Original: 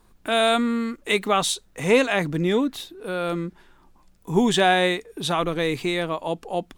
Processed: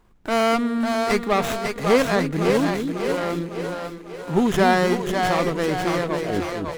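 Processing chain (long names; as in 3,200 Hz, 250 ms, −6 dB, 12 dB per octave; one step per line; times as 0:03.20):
turntable brake at the end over 0.67 s
echo with a time of its own for lows and highs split 380 Hz, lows 246 ms, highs 549 ms, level −4 dB
windowed peak hold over 9 samples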